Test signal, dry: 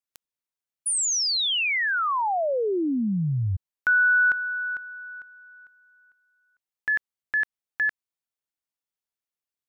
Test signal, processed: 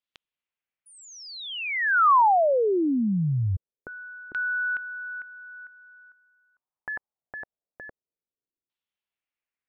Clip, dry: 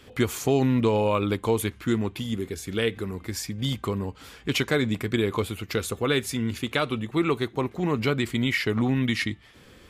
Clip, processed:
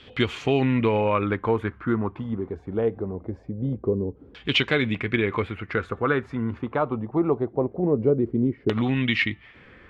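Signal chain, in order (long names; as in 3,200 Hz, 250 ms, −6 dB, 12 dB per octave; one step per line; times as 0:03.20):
auto-filter low-pass saw down 0.23 Hz 350–3,500 Hz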